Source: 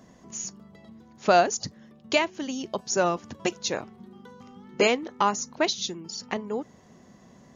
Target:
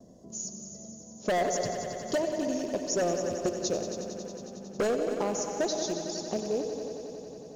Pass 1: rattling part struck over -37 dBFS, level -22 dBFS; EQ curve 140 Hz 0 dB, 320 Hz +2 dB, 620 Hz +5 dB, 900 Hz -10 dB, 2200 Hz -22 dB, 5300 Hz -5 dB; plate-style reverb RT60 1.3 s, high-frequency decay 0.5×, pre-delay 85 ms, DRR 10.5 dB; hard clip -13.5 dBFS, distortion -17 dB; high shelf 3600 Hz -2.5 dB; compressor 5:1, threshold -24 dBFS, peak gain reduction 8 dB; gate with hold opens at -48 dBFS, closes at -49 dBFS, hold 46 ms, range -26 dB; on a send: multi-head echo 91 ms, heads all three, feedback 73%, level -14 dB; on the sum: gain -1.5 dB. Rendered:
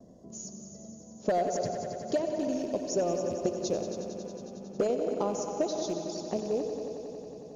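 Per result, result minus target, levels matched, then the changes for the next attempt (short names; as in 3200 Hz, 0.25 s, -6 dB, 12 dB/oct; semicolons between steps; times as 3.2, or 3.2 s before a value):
hard clip: distortion -9 dB; 8000 Hz band -5.0 dB
change: hard clip -19.5 dBFS, distortion -9 dB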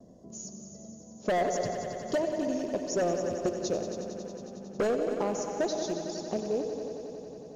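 8000 Hz band -5.0 dB
change: high shelf 3600 Hz +5 dB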